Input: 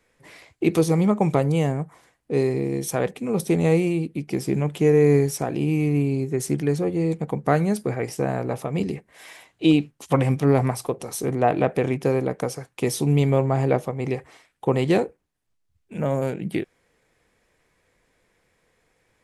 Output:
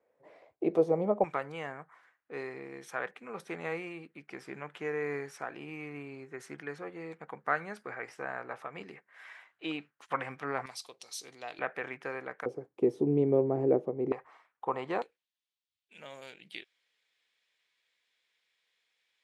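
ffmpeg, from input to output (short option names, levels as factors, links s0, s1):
-af "asetnsamples=n=441:p=0,asendcmd='1.24 bandpass f 1500;10.66 bandpass f 4300;11.59 bandpass f 1600;12.46 bandpass f 370;14.12 bandpass f 1100;15.02 bandpass f 3500',bandpass=f=590:t=q:w=2.4:csg=0"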